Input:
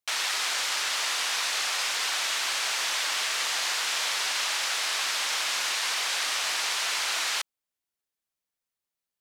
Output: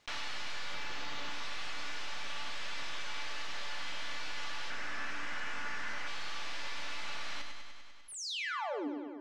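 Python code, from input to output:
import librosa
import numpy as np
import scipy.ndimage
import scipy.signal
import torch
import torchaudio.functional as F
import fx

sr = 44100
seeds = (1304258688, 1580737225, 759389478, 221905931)

y = fx.tracing_dist(x, sr, depth_ms=0.063)
y = fx.sample_hold(y, sr, seeds[0], rate_hz=9700.0, jitter_pct=0, at=(0.74, 1.31))
y = fx.graphic_eq_15(y, sr, hz=(250, 1600, 4000, 16000), db=(9, 7, -10, -9), at=(4.7, 6.07))
y = fx.spec_paint(y, sr, seeds[1], shape='fall', start_s=8.08, length_s=0.8, low_hz=260.0, high_hz=11000.0, level_db=-30.0)
y = 10.0 ** (-30.0 / 20.0) * np.tanh(y / 10.0 ** (-30.0 / 20.0))
y = fx.air_absorb(y, sr, metres=140.0)
y = fx.comb_fb(y, sr, f0_hz=290.0, decay_s=0.48, harmonics='all', damping=0.0, mix_pct=80)
y = fx.echo_feedback(y, sr, ms=99, feedback_pct=55, wet_db=-8)
y = fx.env_flatten(y, sr, amount_pct=50)
y = y * librosa.db_to_amplitude(4.5)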